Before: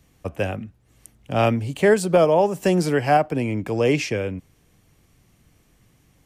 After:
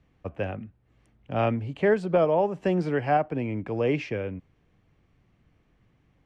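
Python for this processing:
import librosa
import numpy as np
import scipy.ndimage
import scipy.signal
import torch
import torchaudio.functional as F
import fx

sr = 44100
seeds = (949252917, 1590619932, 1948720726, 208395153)

y = scipy.signal.sosfilt(scipy.signal.butter(2, 2600.0, 'lowpass', fs=sr, output='sos'), x)
y = y * librosa.db_to_amplitude(-5.5)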